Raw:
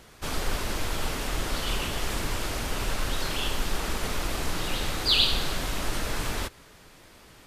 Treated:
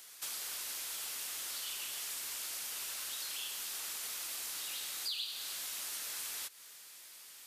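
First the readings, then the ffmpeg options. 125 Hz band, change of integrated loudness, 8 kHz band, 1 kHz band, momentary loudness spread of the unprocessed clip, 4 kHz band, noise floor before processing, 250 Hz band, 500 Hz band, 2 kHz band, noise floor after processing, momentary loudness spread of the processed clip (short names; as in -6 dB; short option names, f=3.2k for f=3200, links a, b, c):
under -35 dB, -9.5 dB, -2.0 dB, -19.0 dB, 8 LU, -11.5 dB, -53 dBFS, -30.5 dB, -25.0 dB, -13.5 dB, -54 dBFS, 5 LU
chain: -af "aderivative,acompressor=threshold=-45dB:ratio=4,volume=5.5dB"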